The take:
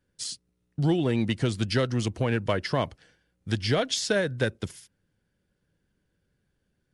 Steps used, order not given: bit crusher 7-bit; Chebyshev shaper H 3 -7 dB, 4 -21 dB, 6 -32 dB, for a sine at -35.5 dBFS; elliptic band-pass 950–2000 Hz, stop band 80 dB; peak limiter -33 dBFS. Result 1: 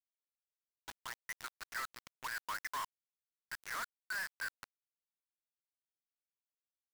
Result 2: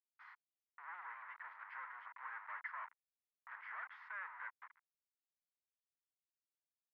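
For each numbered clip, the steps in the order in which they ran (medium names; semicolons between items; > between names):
elliptic band-pass > Chebyshev shaper > peak limiter > bit crusher; Chebyshev shaper > peak limiter > bit crusher > elliptic band-pass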